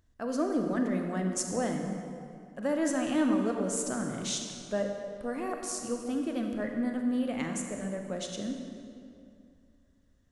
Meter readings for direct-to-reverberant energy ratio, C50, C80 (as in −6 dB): 3.0 dB, 4.0 dB, 5.0 dB